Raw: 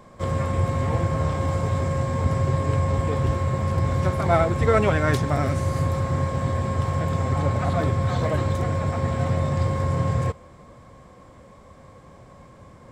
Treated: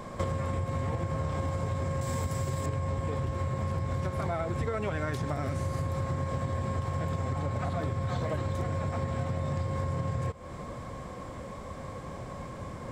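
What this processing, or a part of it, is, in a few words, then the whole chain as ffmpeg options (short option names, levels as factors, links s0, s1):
serial compression, leveller first: -filter_complex "[0:a]asettb=1/sr,asplit=3[s0][s1][s2];[s0]atrim=end=2.014[s3];[s1]atrim=start=2.01:end=2.66,asetpts=PTS-STARTPTS,afade=t=in:d=0.004:c=qsin,afade=t=out:st=0.646:d=0.004:c=qsin,aemphasis=mode=production:type=75fm[s4];[s2]atrim=start=2.656[s5];[s3][s4]acrossfade=d=0.004:c1=hsin:c2=qsin[s6];[s6][s5]acrossfade=d=0.004:c1=qsin:c2=hsin,acompressor=threshold=0.0708:ratio=3,acompressor=threshold=0.0178:ratio=10,volume=2.24"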